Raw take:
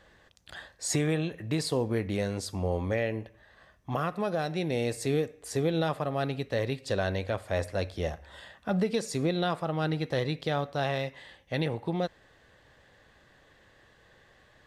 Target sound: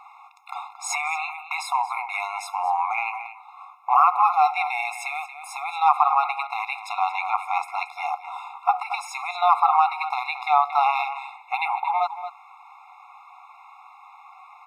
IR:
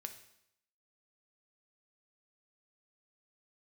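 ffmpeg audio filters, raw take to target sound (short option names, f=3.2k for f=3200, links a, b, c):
-filter_complex "[0:a]equalizer=f=125:t=o:w=1:g=4,equalizer=f=250:t=o:w=1:g=7,equalizer=f=500:t=o:w=1:g=9,equalizer=f=1k:t=o:w=1:g=10,equalizer=f=2k:t=o:w=1:g=11,equalizer=f=4k:t=o:w=1:g=-8,equalizer=f=8k:t=o:w=1:g=-6,asplit=2[a][b];[b]adelay=227.4,volume=-12dB,highshelf=f=4k:g=-5.12[c];[a][c]amix=inputs=2:normalize=0,alimiter=level_in=9dB:limit=-1dB:release=50:level=0:latency=1,afftfilt=real='re*eq(mod(floor(b*sr/1024/700),2),1)':imag='im*eq(mod(floor(b*sr/1024/700),2),1)':win_size=1024:overlap=0.75"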